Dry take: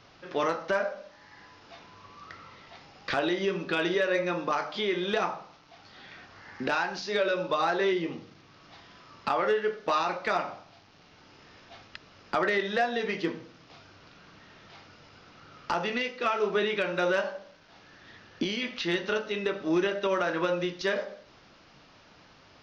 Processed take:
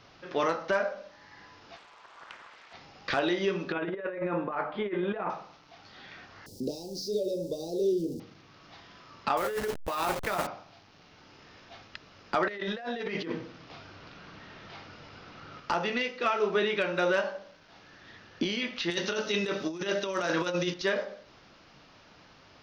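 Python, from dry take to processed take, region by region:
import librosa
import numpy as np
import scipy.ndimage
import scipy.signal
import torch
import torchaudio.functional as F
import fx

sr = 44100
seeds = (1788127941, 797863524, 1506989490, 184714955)

y = fx.chain(x, sr, fx.bandpass_q(hz=2000.0, q=0.54),
    fx.doppler_dist(depth_ms=0.65), at=(1.76, 2.74))
y = fx.chain(y, sr, fx.bessel_lowpass(hz=1600.0, order=4),
    fx.over_compress(threshold_db=-31.0, ratio=-0.5), at=(3.72, 5.3))
y = fx.chain(y, sr, fx.zero_step(step_db=-40.5),
    fx.cheby1_bandstop(low_hz=490.0, high_hz=4900.0, order=3), at=(6.46, 8.2))
y = fx.chain(y, sr, fx.delta_hold(step_db=-32.0),
    fx.over_compress(threshold_db=-30.0, ratio=-1.0), at=(9.37, 10.47))
y = fx.chain(y, sr, fx.over_compress(threshold_db=-35.0, ratio=-1.0),
    fx.air_absorb(metres=69.0), at=(12.48, 15.6))
y = fx.chain(y, sr, fx.highpass(hz=89.0, slope=12),
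    fx.bass_treble(bass_db=3, treble_db=14),
    fx.over_compress(threshold_db=-29.0, ratio=-0.5), at=(18.9, 20.74))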